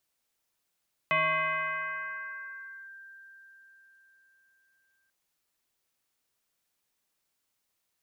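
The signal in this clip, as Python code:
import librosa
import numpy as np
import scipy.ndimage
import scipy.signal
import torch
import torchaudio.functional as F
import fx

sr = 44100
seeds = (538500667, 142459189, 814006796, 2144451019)

y = fx.fm2(sr, length_s=3.99, level_db=-22.0, carrier_hz=1580.0, ratio=0.3, index=2.1, index_s=1.8, decay_s=4.76, shape='linear')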